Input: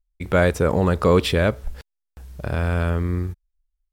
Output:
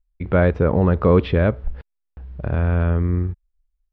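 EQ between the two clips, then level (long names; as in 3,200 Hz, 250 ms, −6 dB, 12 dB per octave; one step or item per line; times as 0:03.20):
Bessel low-pass filter 3,500 Hz, order 2
high-frequency loss of the air 310 metres
low-shelf EQ 380 Hz +4 dB
0.0 dB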